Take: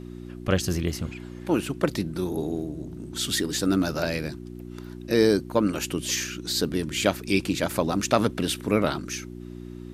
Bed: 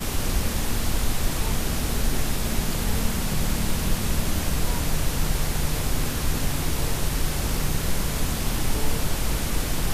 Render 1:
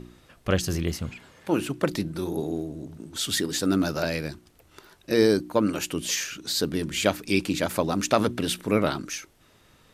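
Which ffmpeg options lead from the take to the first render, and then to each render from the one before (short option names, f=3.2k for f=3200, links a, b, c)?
-af "bandreject=f=60:t=h:w=4,bandreject=f=120:t=h:w=4,bandreject=f=180:t=h:w=4,bandreject=f=240:t=h:w=4,bandreject=f=300:t=h:w=4,bandreject=f=360:t=h:w=4"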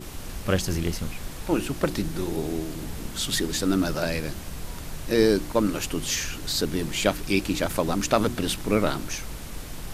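-filter_complex "[1:a]volume=-11.5dB[a];[0:a][a]amix=inputs=2:normalize=0"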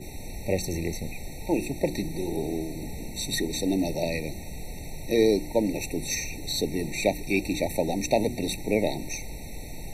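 -filter_complex "[0:a]acrossover=split=260|2700[a][b][c];[a]asoftclip=type=tanh:threshold=-29.5dB[d];[d][b][c]amix=inputs=3:normalize=0,afftfilt=real='re*eq(mod(floor(b*sr/1024/910),2),0)':imag='im*eq(mod(floor(b*sr/1024/910),2),0)':win_size=1024:overlap=0.75"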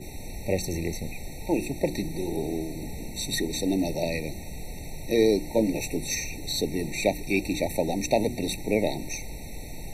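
-filter_complex "[0:a]asettb=1/sr,asplit=3[a][b][c];[a]atrim=end=5.454[d];[b]atrim=start=5.45:end=5.97,asetpts=PTS-STARTPTS,afade=t=in:d=0.004:c=qsin,afade=t=out:st=0.516:d=0.004:c=qsin,asplit=2[e][f];[f]adelay=18,volume=-6dB[g];[e][g]amix=inputs=2:normalize=0,atrim=end_sample=22932[h];[c]atrim=start=5.966[i];[d][h]acrossfade=d=0.004:c1=hsin:c2=qsin[j];[j][i]acrossfade=d=0.004:c1=qsin:c2=hsin"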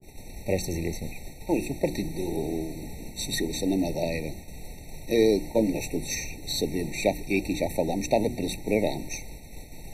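-af "agate=range=-33dB:threshold=-31dB:ratio=3:detection=peak,adynamicequalizer=threshold=0.00891:dfrequency=1700:dqfactor=0.7:tfrequency=1700:tqfactor=0.7:attack=5:release=100:ratio=0.375:range=1.5:mode=cutabove:tftype=highshelf"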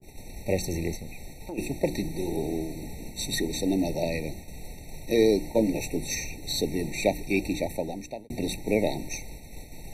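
-filter_complex "[0:a]asplit=3[a][b][c];[a]afade=t=out:st=0.95:d=0.02[d];[b]acompressor=threshold=-35dB:ratio=4:attack=3.2:release=140:knee=1:detection=peak,afade=t=in:st=0.95:d=0.02,afade=t=out:st=1.57:d=0.02[e];[c]afade=t=in:st=1.57:d=0.02[f];[d][e][f]amix=inputs=3:normalize=0,asplit=2[g][h];[g]atrim=end=8.3,asetpts=PTS-STARTPTS,afade=t=out:st=7.47:d=0.83[i];[h]atrim=start=8.3,asetpts=PTS-STARTPTS,afade=t=in:d=0.004:c=hsin[j];[i][j]concat=n=2:v=0:a=1"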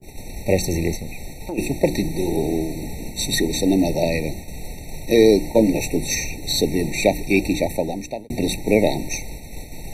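-af "volume=8dB,alimiter=limit=-3dB:level=0:latency=1"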